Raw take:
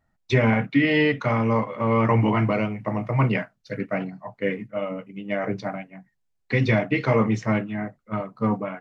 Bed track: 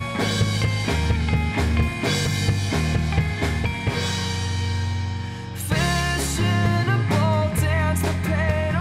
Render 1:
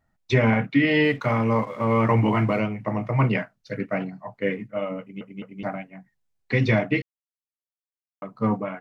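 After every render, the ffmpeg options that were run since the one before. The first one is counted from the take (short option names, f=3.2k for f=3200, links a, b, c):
-filter_complex "[0:a]asettb=1/sr,asplit=3[a][b][c];[a]atrim=end=1.044[d];[b]atrim=start=1.04:end=2.6,asetpts=PTS-STARTPTS,afade=t=in:d=0.004:c=qsin,afade=t=out:st=1.556:d=0.004:c=qsin,aeval=exprs='sgn(val(0))*max(abs(val(0))-0.00237,0)':c=same[e];[c]atrim=start=2.596[f];[d][e]acrossfade=d=0.004:c1=hsin:c2=qsin[g];[g][f]acrossfade=d=0.004:c1=qsin:c2=hsin,asplit=6[h][i][j][k][l][m];[h]atrim=end=5.212[n];[i]atrim=start=4.998:end=5.212[o];[j]atrim=start=4.998:end=5.212[p];[k]atrim=start=5.628:end=7.02,asetpts=PTS-STARTPTS,afade=t=out:st=1.388:d=0.004:c=hsin[q];[l]atrim=start=7.02:end=8.22,asetpts=PTS-STARTPTS,volume=0[r];[m]atrim=start=8.22,asetpts=PTS-STARTPTS,afade=t=in:d=0.004:c=hsin[s];[n][o]acrossfade=d=0.004:c1=hsin:c2=hsin[t];[t][p]acrossfade=d=0.004:c1=hsin:c2=hsin[u];[q][r][s]concat=n=3:v=0:a=1[v];[u][v]acrossfade=d=0.004:c1=hsin:c2=hsin"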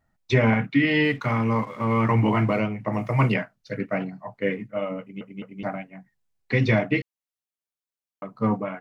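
-filter_complex "[0:a]asettb=1/sr,asplit=3[a][b][c];[a]atrim=end=0.544[d];[b]atrim=start=0.54:end=2.21,asetpts=PTS-STARTPTS,afade=t=in:d=0.004:c=qsin,afade=t=out:st=1.666:d=0.004:c=qsin,equalizer=f=570:t=o:w=0.77:g=-6[e];[c]atrim=start=2.206[f];[d][e]acrossfade=d=0.004:c1=hsin:c2=qsin[g];[g][f]acrossfade=d=0.004:c1=qsin:c2=hsin,asplit=3[h][i][j];[h]afade=t=out:st=2.92:d=0.02[k];[i]aemphasis=mode=production:type=75kf,afade=t=in:st=2.92:d=0.02,afade=t=out:st=3.33:d=0.02[l];[j]afade=t=in:st=3.33:d=0.02[m];[k][l][m]amix=inputs=3:normalize=0"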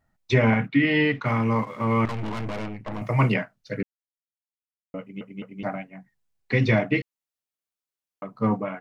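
-filter_complex "[0:a]asettb=1/sr,asplit=3[a][b][c];[a]atrim=end=0.684[d];[b]atrim=start=0.68:end=1.26,asetpts=PTS-STARTPTS,afade=t=in:d=0.004:c=qsin,afade=t=out:st=0.576:d=0.004:c=qsin,lowpass=4.2k[e];[c]atrim=start=1.256[f];[d][e]acrossfade=d=0.004:c1=hsin:c2=qsin[g];[g][f]acrossfade=d=0.004:c1=qsin:c2=hsin,asettb=1/sr,asplit=3[h][i][j];[h]atrim=end=2.054[k];[i]atrim=start=2.05:end=3.02,asetpts=PTS-STARTPTS,afade=t=in:d=0.004:c=qsin,afade=t=out:st=0.966:d=0.004:c=qsin,aeval=exprs='(tanh(28.2*val(0)+0.8)-tanh(0.8))/28.2':c=same[l];[j]atrim=start=3.016[m];[k][l]acrossfade=d=0.004:c1=hsin:c2=qsin[n];[n][m]acrossfade=d=0.004:c1=qsin:c2=hsin,asplit=3[o][p][q];[o]atrim=end=3.83,asetpts=PTS-STARTPTS,afade=t=out:st=3.826:d=0.004:c=hsin[r];[p]atrim=start=3.83:end=4.94,asetpts=PTS-STARTPTS,volume=0[s];[q]atrim=start=4.94,asetpts=PTS-STARTPTS,afade=t=in:d=0.004:c=hsin[t];[r][s][t]concat=n=3:v=0:a=1"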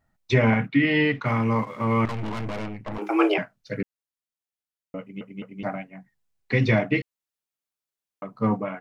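-filter_complex "[0:a]asettb=1/sr,asplit=3[a][b][c];[a]atrim=end=2.984[d];[b]atrim=start=2.98:end=3.38,asetpts=PTS-STARTPTS,afade=t=in:d=0.004:c=qsin,afade=t=out:st=0.396:d=0.004:c=qsin,afreqshift=200[e];[c]atrim=start=3.376[f];[d][e]acrossfade=d=0.004:c1=hsin:c2=qsin[g];[g][f]acrossfade=d=0.004:c1=qsin:c2=hsin"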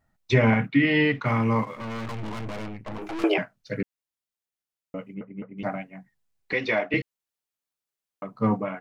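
-filter_complex "[0:a]asettb=1/sr,asplit=3[a][b][c];[a]atrim=end=1.754[d];[b]atrim=start=1.75:end=3.24,asetpts=PTS-STARTPTS,afade=t=in:d=0.004:c=qsin,afade=t=out:st=1.486:d=0.004:c=qsin,aeval=exprs='(tanh(35.5*val(0)+0.55)-tanh(0.55))/35.5':c=same[e];[c]atrim=start=3.236[f];[d][e]acrossfade=d=0.004:c1=hsin:c2=qsin[g];[g][f]acrossfade=d=0.004:c1=qsin:c2=hsin,asettb=1/sr,asplit=3[h][i][j];[h]atrim=end=5.144[k];[i]atrim=start=5.14:end=5.58,asetpts=PTS-STARTPTS,afade=t=in:d=0.004:c=qsin,afade=t=out:st=0.436:d=0.004:c=qsin,lowpass=f=1.9k:w=0.5412,lowpass=f=1.9k:w=1.3066[l];[j]atrim=start=5.576[m];[k][l]acrossfade=d=0.004:c1=hsin:c2=qsin[n];[n][m]acrossfade=d=0.004:c1=qsin:c2=hsin,asettb=1/sr,asplit=3[o][p][q];[o]atrim=end=6.534[r];[p]atrim=start=6.53:end=6.94,asetpts=PTS-STARTPTS,afade=t=in:d=0.004:c=qsin,afade=t=out:st=0.406:d=0.004:c=qsin,highpass=430,lowpass=5.4k[s];[q]atrim=start=6.936[t];[r][s]acrossfade=d=0.004:c1=hsin:c2=qsin[u];[u][t]acrossfade=d=0.004:c1=qsin:c2=hsin"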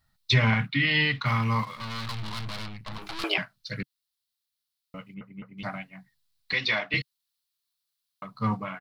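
-af "firequalizer=gain_entry='entry(140,0);entry(300,-12);entry(460,-12);entry(1100,1);entry(1600,0);entry(2400,1);entry(4100,14);entry(6500,2);entry(9800,7)':delay=0.05:min_phase=1"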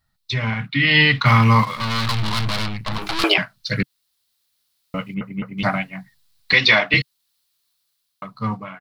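-af "alimiter=limit=-14.5dB:level=0:latency=1:release=441,dynaudnorm=f=130:g=13:m=15dB"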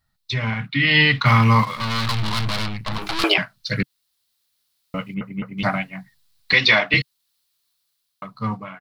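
-af "volume=-1dB"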